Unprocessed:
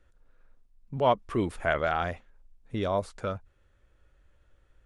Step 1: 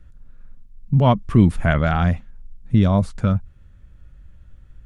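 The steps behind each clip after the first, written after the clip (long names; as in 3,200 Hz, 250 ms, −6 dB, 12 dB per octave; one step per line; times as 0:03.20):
low shelf with overshoot 280 Hz +12.5 dB, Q 1.5
level +5.5 dB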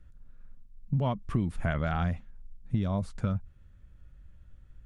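downward compressor 12 to 1, threshold −16 dBFS, peak gain reduction 9.5 dB
level −7.5 dB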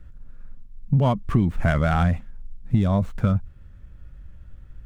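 running median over 9 samples
in parallel at −8 dB: soft clipping −26.5 dBFS, distortion −11 dB
on the sum: level +7 dB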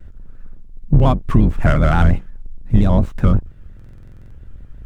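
sub-octave generator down 2 octaves, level +1 dB
buffer that repeats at 0:03.75, samples 2,048, times 11
pitch modulation by a square or saw wave square 5.7 Hz, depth 100 cents
level +4.5 dB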